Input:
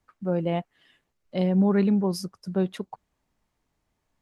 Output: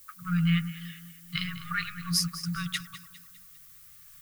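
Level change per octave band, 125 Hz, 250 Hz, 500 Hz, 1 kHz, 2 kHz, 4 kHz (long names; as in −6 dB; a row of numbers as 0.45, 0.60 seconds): −1.5 dB, −8.0 dB, below −40 dB, −4.0 dB, +9.0 dB, +10.5 dB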